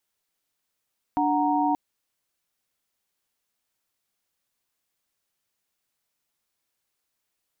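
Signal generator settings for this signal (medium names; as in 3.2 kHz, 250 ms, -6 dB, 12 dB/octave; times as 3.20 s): chord D4/F#5/A#5 sine, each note -24.5 dBFS 0.58 s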